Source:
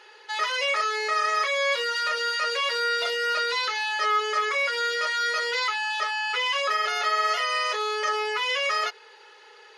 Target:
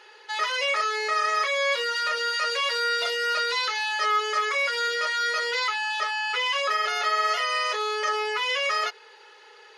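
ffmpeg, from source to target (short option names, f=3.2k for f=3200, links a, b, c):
-filter_complex "[0:a]asettb=1/sr,asplit=3[a][b][c];[a]atrim=end=2.344[d];[b]atrim=start=2.34:end=4.88,asetpts=PTS-STARTPTS,afade=t=in:d=0.004:c=qsin,afade=t=out:st=2.536:d=0.004:c=qsin,bass=f=250:g=-11,treble=f=4k:g=2[e];[c]atrim=start=4.876[f];[d][e]acrossfade=d=0.004:c1=hsin:c2=qsin[g];[g][f]acrossfade=d=0.004:c1=qsin:c2=hsin"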